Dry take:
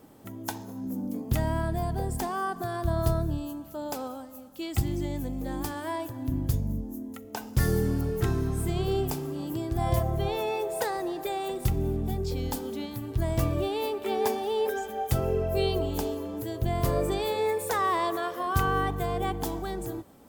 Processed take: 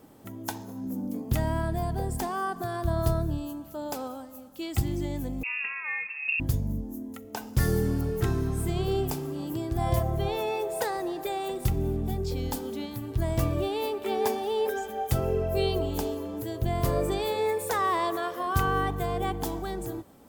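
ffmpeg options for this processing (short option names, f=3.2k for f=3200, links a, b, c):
-filter_complex "[0:a]asettb=1/sr,asplit=3[a][b][c];[a]atrim=end=5.434[d];[b]atrim=start=5.43:end=6.4,asetpts=PTS-STARTPTS,afade=t=in:d=0.004:c=qsin,afade=t=out:st=0.966:d=0.004:c=qsin,lowpass=f=2.4k:t=q:w=0.5098,lowpass=f=2.4k:t=q:w=0.6013,lowpass=f=2.4k:t=q:w=0.9,lowpass=f=2.4k:t=q:w=2.563,afreqshift=-2800[e];[c]atrim=start=6.396[f];[d][e]acrossfade=d=0.004:c1=hsin:c2=qsin[g];[g][f]acrossfade=d=0.004:c1=qsin:c2=hsin"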